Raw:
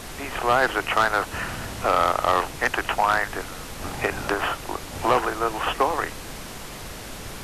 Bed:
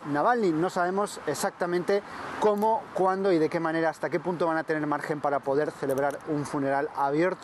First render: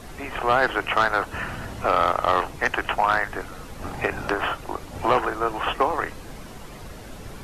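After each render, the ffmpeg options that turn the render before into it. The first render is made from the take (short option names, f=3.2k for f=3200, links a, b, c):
-af "afftdn=nr=9:nf=-37"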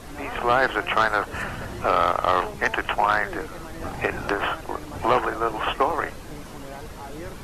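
-filter_complex "[1:a]volume=-14dB[a];[0:a][a]amix=inputs=2:normalize=0"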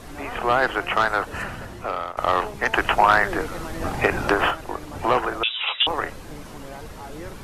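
-filter_complex "[0:a]asettb=1/sr,asplit=3[a][b][c];[a]atrim=end=2.734[d];[b]atrim=start=2.73:end=4.51,asetpts=PTS-STARTPTS,afade=t=in:d=0.004:c=qsin,afade=t=out:st=1.776:d=0.004:c=qsin,acontrast=28[e];[c]atrim=start=4.506[f];[d][e]acrossfade=d=0.004:c1=hsin:c2=qsin[g];[g][f]acrossfade=d=0.004:c1=qsin:c2=hsin,asettb=1/sr,asplit=3[h][i][j];[h]atrim=end=5.434[k];[i]atrim=start=5.43:end=5.87,asetpts=PTS-STARTPTS,afade=t=in:d=0.004:c=qsin,afade=t=out:st=0.436:d=0.004:c=qsin,lowpass=f=3.3k:t=q:w=0.5098,lowpass=f=3.3k:t=q:w=0.6013,lowpass=f=3.3k:t=q:w=0.9,lowpass=f=3.3k:t=q:w=2.563,afreqshift=-3900[l];[j]atrim=start=5.866[m];[k][l]acrossfade=d=0.004:c1=hsin:c2=qsin[n];[n][m]acrossfade=d=0.004:c1=qsin:c2=hsin,asplit=2[o][p];[o]atrim=end=2.17,asetpts=PTS-STARTPTS,afade=t=out:st=1.41:d=0.76:silence=0.188365[q];[p]atrim=start=2.17,asetpts=PTS-STARTPTS,afade=t=in:d=0.004:c=hsin:silence=0.188365[r];[q][r]concat=n=2:v=0:a=1"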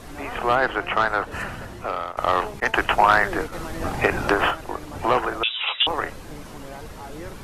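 -filter_complex "[0:a]asettb=1/sr,asplit=3[a][b][c];[a]atrim=end=0.554[d];[b]atrim=start=0.55:end=1.32,asetpts=PTS-STARTPTS,afade=t=in:d=0.004:c=qsin,afade=t=out:st=0.766:d=0.004:c=qsin,highshelf=f=5k:g=-8[e];[c]atrim=start=1.316[f];[d][e]acrossfade=d=0.004:c1=hsin:c2=qsin[g];[g][f]acrossfade=d=0.004:c1=qsin:c2=hsin,asettb=1/sr,asplit=3[h][i][j];[h]atrim=end=2.604[k];[i]atrim=start=2.6:end=3.53,asetpts=PTS-STARTPTS,afade=t=in:d=0.004:c=qsin,afade=t=out:st=0.926:d=0.004:c=qsin,agate=range=-33dB:threshold=-27dB:ratio=3:release=100:detection=peak[l];[j]atrim=start=3.526[m];[k][l]acrossfade=d=0.004:c1=hsin:c2=qsin[n];[n][m]acrossfade=d=0.004:c1=qsin:c2=hsin"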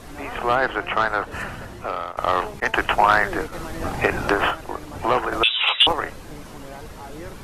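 -filter_complex "[0:a]asettb=1/sr,asplit=3[a][b][c];[a]atrim=end=5.324[d];[b]atrim=start=5.32:end=5.93,asetpts=PTS-STARTPTS,afade=t=in:d=0.004:c=qsin,afade=t=out:st=0.606:d=0.004:c=qsin,acontrast=43[e];[c]atrim=start=5.926[f];[d][e]acrossfade=d=0.004:c1=hsin:c2=qsin[g];[g][f]acrossfade=d=0.004:c1=qsin:c2=hsin"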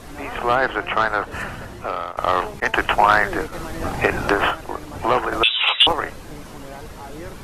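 -af "volume=1.5dB"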